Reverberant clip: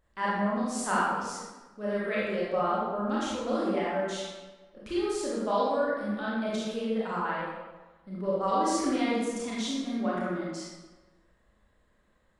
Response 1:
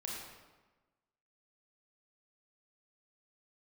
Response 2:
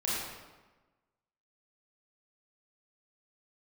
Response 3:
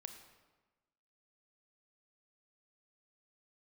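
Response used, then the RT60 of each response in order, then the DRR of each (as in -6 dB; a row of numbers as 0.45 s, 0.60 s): 2; 1.2 s, 1.2 s, 1.2 s; -3.5 dB, -7.5 dB, 6.5 dB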